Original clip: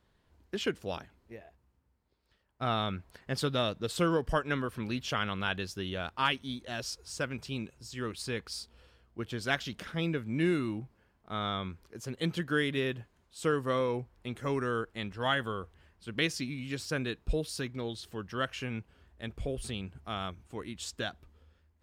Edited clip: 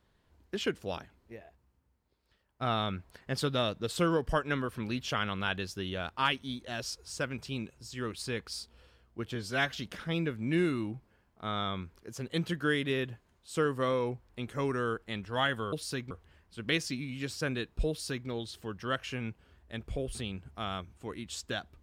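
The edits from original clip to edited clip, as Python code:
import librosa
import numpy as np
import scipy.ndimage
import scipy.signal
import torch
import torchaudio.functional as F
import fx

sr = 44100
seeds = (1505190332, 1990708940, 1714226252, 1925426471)

y = fx.edit(x, sr, fx.stretch_span(start_s=9.35, length_s=0.25, factor=1.5),
    fx.duplicate(start_s=17.39, length_s=0.38, to_s=15.6), tone=tone)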